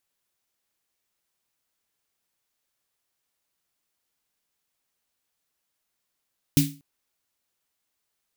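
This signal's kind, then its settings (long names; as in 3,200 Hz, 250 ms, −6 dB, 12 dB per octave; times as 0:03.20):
synth snare length 0.24 s, tones 150 Hz, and 280 Hz, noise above 2,200 Hz, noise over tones −6 dB, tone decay 0.33 s, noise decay 0.30 s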